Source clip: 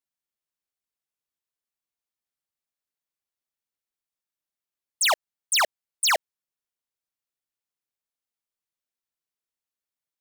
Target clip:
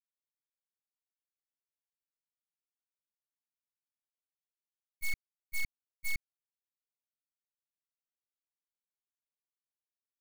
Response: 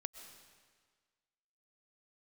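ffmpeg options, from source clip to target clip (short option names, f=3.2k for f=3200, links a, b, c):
-af "agate=range=-38dB:threshold=-21dB:ratio=16:detection=peak,aeval=exprs='val(0)*sin(2*PI*1100*n/s)':c=same,aeval=exprs='abs(val(0))':c=same,volume=1dB"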